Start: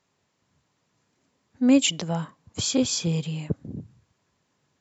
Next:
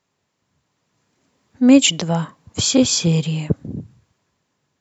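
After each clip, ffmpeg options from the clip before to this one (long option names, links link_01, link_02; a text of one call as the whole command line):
ffmpeg -i in.wav -af "dynaudnorm=framelen=210:gausssize=11:maxgain=11.5dB" out.wav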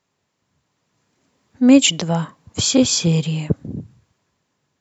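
ffmpeg -i in.wav -af anull out.wav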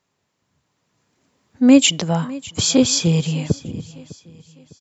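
ffmpeg -i in.wav -af "aecho=1:1:604|1208|1812:0.106|0.0413|0.0161" out.wav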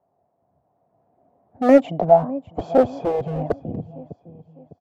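ffmpeg -i in.wav -filter_complex "[0:a]lowpass=frequency=700:width_type=q:width=8.6,acrossover=split=280[link_01][link_02];[link_01]aeval=exprs='0.075*(abs(mod(val(0)/0.075+3,4)-2)-1)':channel_layout=same[link_03];[link_03][link_02]amix=inputs=2:normalize=0,volume=-1dB" out.wav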